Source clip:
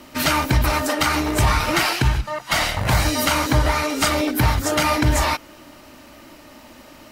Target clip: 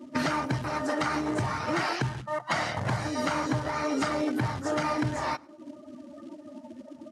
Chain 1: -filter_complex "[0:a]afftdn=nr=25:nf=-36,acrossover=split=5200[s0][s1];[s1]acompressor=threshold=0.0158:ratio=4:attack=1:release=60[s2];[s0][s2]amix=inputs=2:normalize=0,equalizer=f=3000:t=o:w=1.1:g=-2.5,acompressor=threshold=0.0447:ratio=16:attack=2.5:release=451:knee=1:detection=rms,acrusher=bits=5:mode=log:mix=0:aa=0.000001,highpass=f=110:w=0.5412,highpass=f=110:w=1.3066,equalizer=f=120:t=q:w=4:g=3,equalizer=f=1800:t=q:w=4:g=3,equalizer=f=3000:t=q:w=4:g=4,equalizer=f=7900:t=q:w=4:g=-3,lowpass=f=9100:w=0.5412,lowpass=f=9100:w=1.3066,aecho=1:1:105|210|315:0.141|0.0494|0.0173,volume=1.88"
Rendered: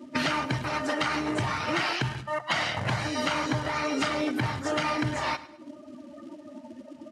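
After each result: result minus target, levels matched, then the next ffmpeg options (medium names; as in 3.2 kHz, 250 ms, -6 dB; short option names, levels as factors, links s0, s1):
echo-to-direct +11.5 dB; 4 kHz band +5.0 dB
-filter_complex "[0:a]afftdn=nr=25:nf=-36,acrossover=split=5200[s0][s1];[s1]acompressor=threshold=0.0158:ratio=4:attack=1:release=60[s2];[s0][s2]amix=inputs=2:normalize=0,equalizer=f=3000:t=o:w=1.1:g=-2.5,acompressor=threshold=0.0447:ratio=16:attack=2.5:release=451:knee=1:detection=rms,acrusher=bits=5:mode=log:mix=0:aa=0.000001,highpass=f=110:w=0.5412,highpass=f=110:w=1.3066,equalizer=f=120:t=q:w=4:g=3,equalizer=f=1800:t=q:w=4:g=3,equalizer=f=3000:t=q:w=4:g=4,equalizer=f=7900:t=q:w=4:g=-3,lowpass=f=9100:w=0.5412,lowpass=f=9100:w=1.3066,aecho=1:1:105|210:0.0376|0.0132,volume=1.88"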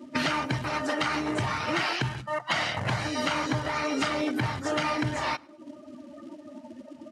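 4 kHz band +5.0 dB
-filter_complex "[0:a]afftdn=nr=25:nf=-36,acrossover=split=5200[s0][s1];[s1]acompressor=threshold=0.0158:ratio=4:attack=1:release=60[s2];[s0][s2]amix=inputs=2:normalize=0,equalizer=f=3000:t=o:w=1.1:g=-13,acompressor=threshold=0.0447:ratio=16:attack=2.5:release=451:knee=1:detection=rms,acrusher=bits=5:mode=log:mix=0:aa=0.000001,highpass=f=110:w=0.5412,highpass=f=110:w=1.3066,equalizer=f=120:t=q:w=4:g=3,equalizer=f=1800:t=q:w=4:g=3,equalizer=f=3000:t=q:w=4:g=4,equalizer=f=7900:t=q:w=4:g=-3,lowpass=f=9100:w=0.5412,lowpass=f=9100:w=1.3066,aecho=1:1:105|210:0.0376|0.0132,volume=1.88"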